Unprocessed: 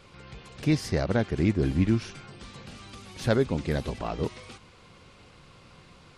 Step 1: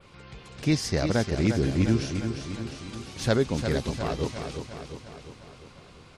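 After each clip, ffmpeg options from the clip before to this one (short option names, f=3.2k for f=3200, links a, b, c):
-af "adynamicequalizer=threshold=0.002:dfrequency=6200:dqfactor=0.91:tfrequency=6200:tqfactor=0.91:attack=5:release=100:ratio=0.375:range=3.5:mode=boostabove:tftype=bell,aecho=1:1:352|704|1056|1408|1760|2112|2464:0.422|0.24|0.137|0.0781|0.0445|0.0254|0.0145"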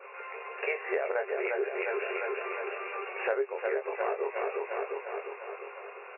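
-filter_complex "[0:a]afftfilt=real='re*between(b*sr/4096,370,2800)':imag='im*between(b*sr/4096,370,2800)':win_size=4096:overlap=0.75,asplit=2[a][b];[b]adelay=22,volume=-5dB[c];[a][c]amix=inputs=2:normalize=0,acompressor=threshold=-37dB:ratio=5,volume=8.5dB"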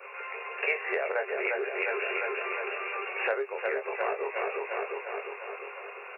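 -filter_complex "[0:a]highshelf=f=2.3k:g=10.5,acrossover=split=400|520|860[a][b][c][d];[a]asoftclip=type=tanh:threshold=-39dB[e];[e][b][c][d]amix=inputs=4:normalize=0"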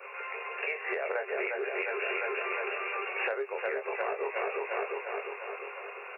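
-af "alimiter=limit=-21.5dB:level=0:latency=1:release=218"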